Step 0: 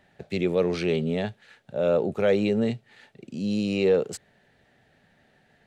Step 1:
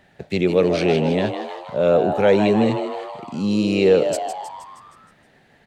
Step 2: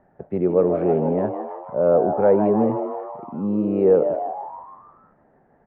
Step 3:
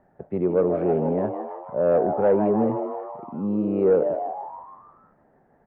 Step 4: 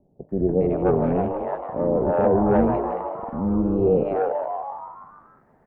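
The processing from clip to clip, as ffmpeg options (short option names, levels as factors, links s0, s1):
-filter_complex "[0:a]asplit=8[s0][s1][s2][s3][s4][s5][s6][s7];[s1]adelay=157,afreqshift=120,volume=0.376[s8];[s2]adelay=314,afreqshift=240,volume=0.211[s9];[s3]adelay=471,afreqshift=360,volume=0.117[s10];[s4]adelay=628,afreqshift=480,volume=0.0661[s11];[s5]adelay=785,afreqshift=600,volume=0.0372[s12];[s6]adelay=942,afreqshift=720,volume=0.0207[s13];[s7]adelay=1099,afreqshift=840,volume=0.0116[s14];[s0][s8][s9][s10][s11][s12][s13][s14]amix=inputs=8:normalize=0,volume=2"
-af "lowpass=f=1200:w=0.5412,lowpass=f=1200:w=1.3066,equalizer=f=100:t=o:w=2:g=-5.5"
-af "acontrast=38,volume=0.422"
-filter_complex "[0:a]tremolo=f=290:d=0.667,acrossover=split=540[s0][s1];[s1]adelay=290[s2];[s0][s2]amix=inputs=2:normalize=0,volume=2"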